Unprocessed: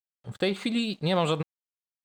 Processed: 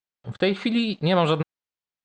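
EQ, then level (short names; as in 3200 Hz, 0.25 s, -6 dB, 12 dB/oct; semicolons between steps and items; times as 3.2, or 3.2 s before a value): air absorption 73 m; dynamic EQ 1500 Hz, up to +5 dB, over -52 dBFS, Q 5.3; LPF 7000 Hz 12 dB/oct; +5.0 dB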